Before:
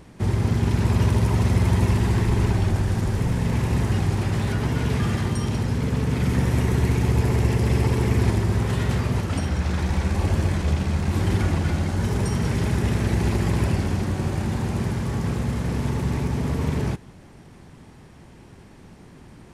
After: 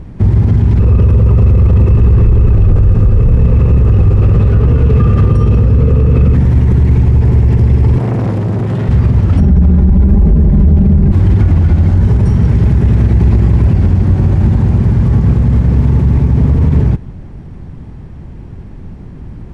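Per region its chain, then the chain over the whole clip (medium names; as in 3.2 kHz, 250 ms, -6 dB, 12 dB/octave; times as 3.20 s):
0.79–6.35 s: bass shelf 91 Hz +11 dB + small resonant body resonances 480/1200/2600 Hz, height 14 dB, ringing for 25 ms
7.98–8.89 s: high-pass 120 Hz 24 dB/octave + transformer saturation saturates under 860 Hz
9.40–11.12 s: tilt shelf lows +8 dB, about 880 Hz + comb 5 ms, depth 93% + transformer saturation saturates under 150 Hz
whole clip: RIAA curve playback; loudness maximiser +7 dB; trim -1 dB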